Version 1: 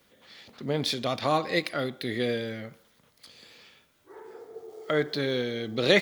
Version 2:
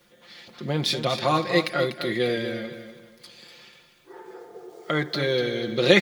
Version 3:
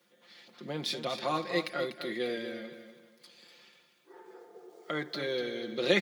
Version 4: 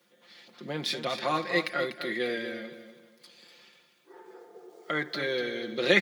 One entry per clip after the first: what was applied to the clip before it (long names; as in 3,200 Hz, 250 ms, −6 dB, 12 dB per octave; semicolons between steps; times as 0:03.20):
high-shelf EQ 12,000 Hz −3.5 dB; comb filter 5.7 ms; repeating echo 245 ms, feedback 32%, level −10 dB; level +2.5 dB
high-pass filter 170 Hz 24 dB per octave; level −9 dB
dynamic equaliser 1,800 Hz, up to +6 dB, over −50 dBFS, Q 1.6; level +2 dB